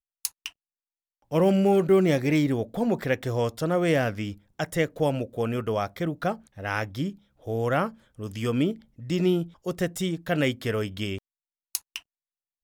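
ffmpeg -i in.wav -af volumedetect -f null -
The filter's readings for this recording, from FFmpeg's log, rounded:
mean_volume: -26.8 dB
max_volume: -6.4 dB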